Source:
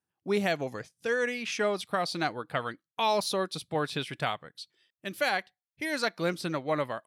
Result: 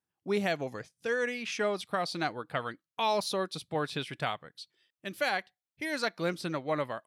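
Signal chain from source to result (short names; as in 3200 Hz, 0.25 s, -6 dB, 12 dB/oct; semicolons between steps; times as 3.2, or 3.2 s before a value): high shelf 9600 Hz -3.5 dB; gain -2 dB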